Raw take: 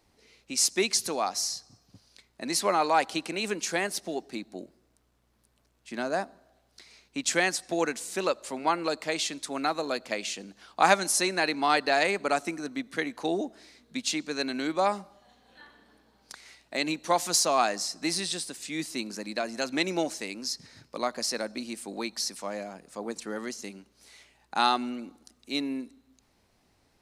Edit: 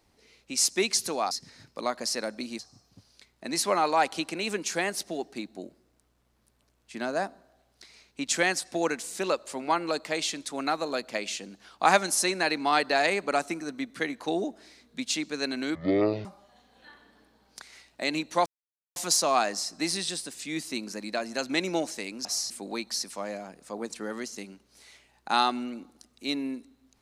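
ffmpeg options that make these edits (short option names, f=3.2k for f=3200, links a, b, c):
-filter_complex "[0:a]asplit=8[a][b][c][d][e][f][g][h];[a]atrim=end=1.312[i];[b]atrim=start=20.478:end=21.762[j];[c]atrim=start=1.558:end=14.724[k];[d]atrim=start=14.72:end=14.98,asetpts=PTS-STARTPTS,asetrate=22932,aresample=44100[l];[e]atrim=start=14.976:end=17.19,asetpts=PTS-STARTPTS,afade=t=out:st=2.21:d=0.004:c=hsin,apad=pad_dur=0.5[m];[f]atrim=start=17.19:end=20.482,asetpts=PTS-STARTPTS,afade=t=in:d=0.004:c=hsin[n];[g]atrim=start=1.308:end=1.562[o];[h]atrim=start=21.758[p];[i][j]acrossfade=d=0.004:c1=hsin:c2=hsin[q];[q][k]acrossfade=d=0.004:c1=hsin:c2=hsin[r];[r][l]acrossfade=d=0.004:c1=hsin:c2=hsin[s];[m][n]concat=n=2:v=0:a=1[t];[s][t]acrossfade=d=0.004:c1=hsin:c2=hsin[u];[u][o]acrossfade=d=0.004:c1=hsin:c2=hsin[v];[v][p]acrossfade=d=0.004:c1=hsin:c2=hsin"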